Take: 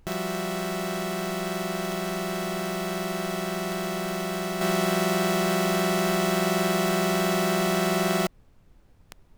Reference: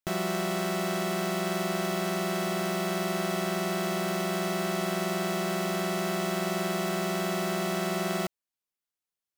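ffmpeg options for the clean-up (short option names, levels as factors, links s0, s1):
-af "adeclick=t=4,agate=range=0.0891:threshold=0.00631,asetnsamples=n=441:p=0,asendcmd='4.61 volume volume -5.5dB',volume=1"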